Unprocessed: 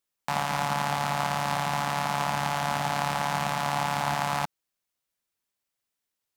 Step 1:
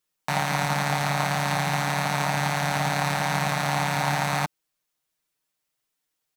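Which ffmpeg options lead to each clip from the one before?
-af "aecho=1:1:6.5:0.8,volume=1.26"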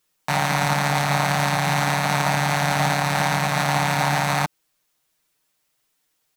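-af "alimiter=limit=0.126:level=0:latency=1:release=80,volume=2.82"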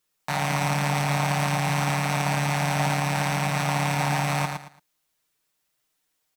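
-af "aecho=1:1:112|224|336:0.531|0.133|0.0332,volume=0.562"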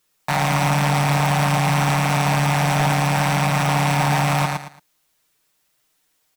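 -af "aeval=exprs='0.299*sin(PI/2*2*val(0)/0.299)':c=same,volume=0.794"

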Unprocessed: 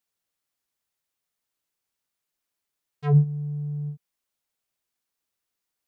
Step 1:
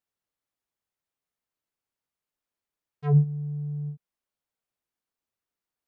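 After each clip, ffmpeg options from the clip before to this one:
-af "highshelf=f=2300:g=-9,volume=0.841"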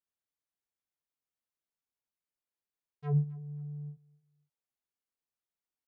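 -af "aecho=1:1:263|526:0.075|0.0202,volume=0.376"

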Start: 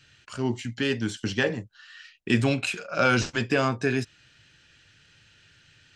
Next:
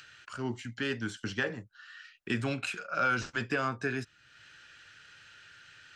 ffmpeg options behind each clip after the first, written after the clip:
-filter_complex "[0:a]equalizer=f=1400:w=2:g=9,acrossover=split=360[s0][s1];[s1]acompressor=mode=upward:threshold=0.0141:ratio=2.5[s2];[s0][s2]amix=inputs=2:normalize=0,alimiter=limit=0.282:level=0:latency=1:release=312,volume=0.398"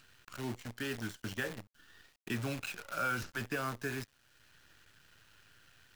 -filter_complex "[0:a]lowshelf=f=72:g=11,acrossover=split=530|1900[s0][s1][s2];[s0]acompressor=mode=upward:threshold=0.00251:ratio=2.5[s3];[s3][s1][s2]amix=inputs=3:normalize=0,acrusher=bits=7:dc=4:mix=0:aa=0.000001,volume=0.501"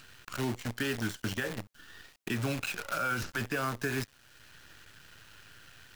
-af "alimiter=level_in=2.24:limit=0.0631:level=0:latency=1:release=165,volume=0.447,volume=2.66"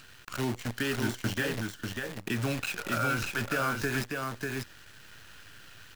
-af "aecho=1:1:593:0.668,volume=1.19"

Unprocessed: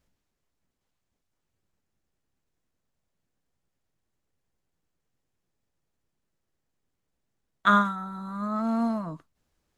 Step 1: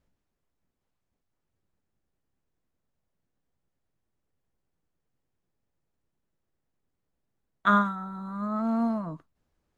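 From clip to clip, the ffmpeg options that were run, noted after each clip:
-af "highshelf=f=2400:g=-8.5"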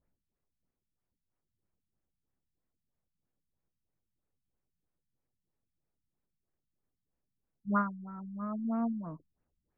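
-af "afftfilt=real='re*lt(b*sr/1024,230*pow(2900/230,0.5+0.5*sin(2*PI*3.1*pts/sr)))':imag='im*lt(b*sr/1024,230*pow(2900/230,0.5+0.5*sin(2*PI*3.1*pts/sr)))':win_size=1024:overlap=0.75,volume=0.531"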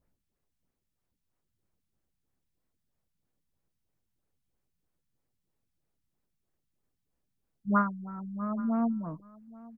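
-af "aecho=1:1:828:0.0891,volume=1.58"

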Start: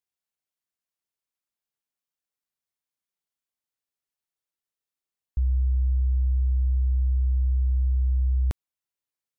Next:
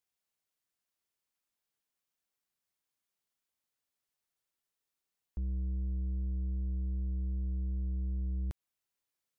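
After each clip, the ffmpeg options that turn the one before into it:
-af "alimiter=level_in=1.26:limit=0.0631:level=0:latency=1:release=151,volume=0.794,asoftclip=type=tanh:threshold=0.02,volume=1.26"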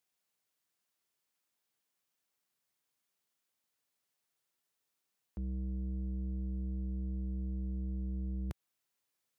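-af "highpass=94,volume=1.5"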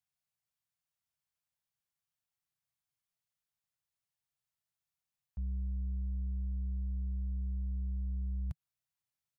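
-af "firequalizer=gain_entry='entry(150,0);entry(260,-23);entry(430,-22);entry(660,-11)':delay=0.05:min_phase=1,volume=1.33"

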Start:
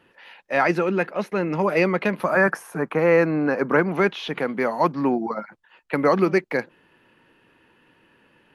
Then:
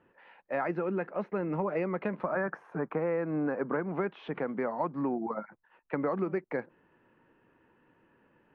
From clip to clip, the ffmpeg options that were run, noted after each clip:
-af "lowpass=1500,acompressor=threshold=0.0794:ratio=5,volume=0.531"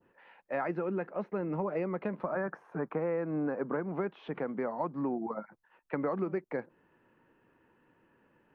-af "adynamicequalizer=threshold=0.00355:dfrequency=2100:dqfactor=0.77:tfrequency=2100:tqfactor=0.77:attack=5:release=100:ratio=0.375:range=2:mode=cutabove:tftype=bell,volume=0.841"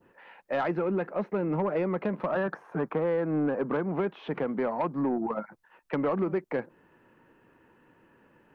-af "aeval=exprs='(tanh(20*val(0)+0.05)-tanh(0.05))/20':c=same,volume=2.11"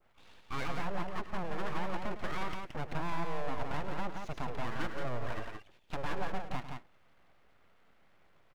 -af "aeval=exprs='abs(val(0))':c=same,aecho=1:1:105|172:0.251|0.562,volume=0.531"

